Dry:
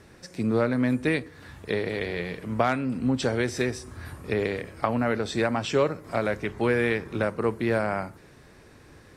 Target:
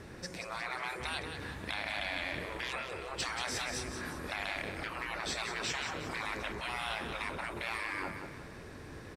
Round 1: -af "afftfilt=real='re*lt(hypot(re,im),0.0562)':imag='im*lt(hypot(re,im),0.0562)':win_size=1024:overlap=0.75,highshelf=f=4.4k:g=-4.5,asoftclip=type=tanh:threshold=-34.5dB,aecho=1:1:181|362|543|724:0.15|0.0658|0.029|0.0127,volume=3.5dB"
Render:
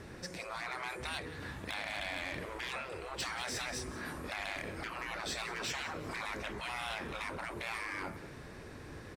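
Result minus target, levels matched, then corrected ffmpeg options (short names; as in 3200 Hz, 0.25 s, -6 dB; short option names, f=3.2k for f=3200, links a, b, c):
soft clip: distortion +11 dB; echo-to-direct -8.5 dB
-af "afftfilt=real='re*lt(hypot(re,im),0.0562)':imag='im*lt(hypot(re,im),0.0562)':win_size=1024:overlap=0.75,highshelf=f=4.4k:g=-4.5,asoftclip=type=tanh:threshold=-26.5dB,aecho=1:1:181|362|543|724|905:0.398|0.175|0.0771|0.0339|0.0149,volume=3.5dB"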